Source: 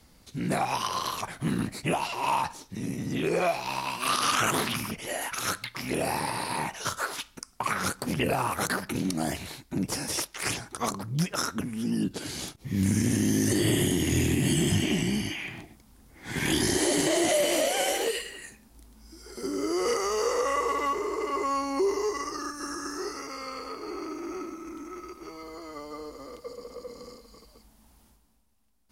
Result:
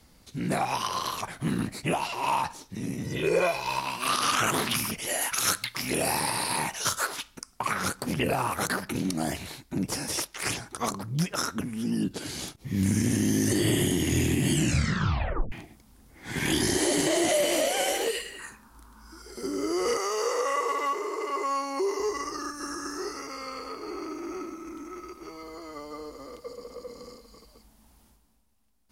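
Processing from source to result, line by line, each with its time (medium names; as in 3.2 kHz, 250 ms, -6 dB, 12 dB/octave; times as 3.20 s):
3.04–3.80 s: comb 2 ms
4.71–7.07 s: peaking EQ 11 kHz +8 dB 2.8 oct
14.55 s: tape stop 0.97 s
18.39–19.22 s: high-order bell 1.2 kHz +15 dB 1 oct
19.97–22.00 s: high-pass 360 Hz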